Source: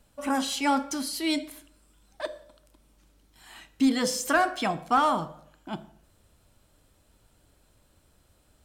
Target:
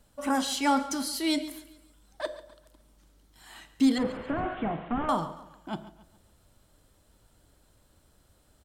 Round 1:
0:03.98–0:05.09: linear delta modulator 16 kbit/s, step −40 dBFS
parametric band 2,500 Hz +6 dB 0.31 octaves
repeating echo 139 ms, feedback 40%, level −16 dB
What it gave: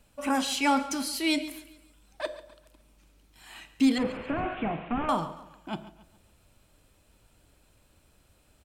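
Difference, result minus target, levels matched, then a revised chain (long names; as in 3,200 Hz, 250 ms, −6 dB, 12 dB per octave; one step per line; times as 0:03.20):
2,000 Hz band +3.0 dB
0:03.98–0:05.09: linear delta modulator 16 kbit/s, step −40 dBFS
parametric band 2,500 Hz −4.5 dB 0.31 octaves
repeating echo 139 ms, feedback 40%, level −16 dB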